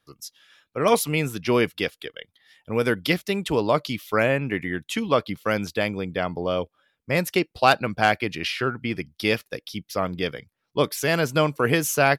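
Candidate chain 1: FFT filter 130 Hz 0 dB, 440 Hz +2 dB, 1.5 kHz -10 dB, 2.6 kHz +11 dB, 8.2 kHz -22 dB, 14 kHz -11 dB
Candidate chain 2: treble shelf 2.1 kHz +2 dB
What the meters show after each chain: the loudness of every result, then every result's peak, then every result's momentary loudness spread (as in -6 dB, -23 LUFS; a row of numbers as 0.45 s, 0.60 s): -22.0 LUFS, -23.5 LUFS; -2.5 dBFS, -4.5 dBFS; 10 LU, 11 LU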